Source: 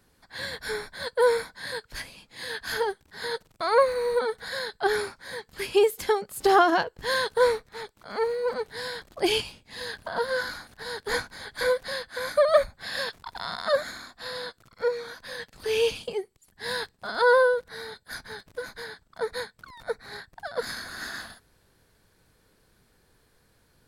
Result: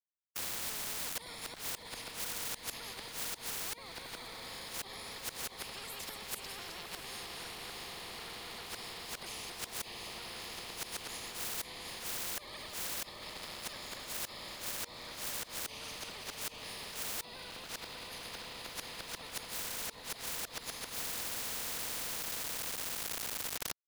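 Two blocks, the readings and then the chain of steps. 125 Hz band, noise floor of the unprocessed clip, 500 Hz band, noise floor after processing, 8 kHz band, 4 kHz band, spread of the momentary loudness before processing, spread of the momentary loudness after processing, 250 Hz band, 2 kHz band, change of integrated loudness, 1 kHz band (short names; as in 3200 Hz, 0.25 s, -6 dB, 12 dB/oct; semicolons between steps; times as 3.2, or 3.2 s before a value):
-5.0 dB, -65 dBFS, -25.5 dB, -52 dBFS, +4.0 dB, -6.0 dB, 17 LU, 7 LU, -14.5 dB, -14.0 dB, -12.0 dB, -17.5 dB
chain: reverse delay 0.14 s, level -3.5 dB; diffused feedback echo 0.646 s, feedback 74%, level -6.5 dB; AGC gain up to 9.5 dB; Butterworth band-stop 1500 Hz, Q 1.4; sample gate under -30 dBFS; high shelf 9200 Hz +4.5 dB; flipped gate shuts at -12 dBFS, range -29 dB; compressor 2.5:1, threshold -34 dBFS, peak gain reduction 10.5 dB; high shelf 4600 Hz -12 dB; soft clip -34 dBFS, distortion -10 dB; spectral compressor 10:1; gain +15 dB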